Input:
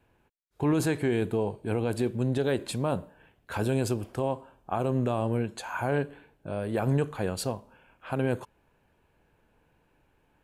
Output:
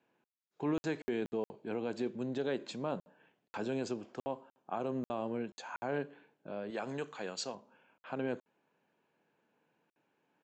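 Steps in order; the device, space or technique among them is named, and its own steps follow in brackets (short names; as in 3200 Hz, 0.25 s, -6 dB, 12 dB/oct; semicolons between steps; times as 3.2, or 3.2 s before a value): call with lost packets (HPF 170 Hz 24 dB/oct; downsampling 16000 Hz; packet loss packets of 60 ms); 6.7–7.55 tilt +2.5 dB/oct; gain -7.5 dB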